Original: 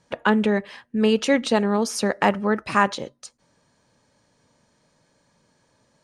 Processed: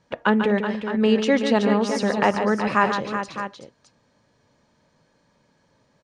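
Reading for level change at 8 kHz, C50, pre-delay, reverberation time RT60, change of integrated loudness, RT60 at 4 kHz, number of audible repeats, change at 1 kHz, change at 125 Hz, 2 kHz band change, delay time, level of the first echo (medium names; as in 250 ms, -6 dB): -5.5 dB, no reverb, no reverb, no reverb, +0.5 dB, no reverb, 3, +1.0 dB, +1.0 dB, +0.5 dB, 143 ms, -8.0 dB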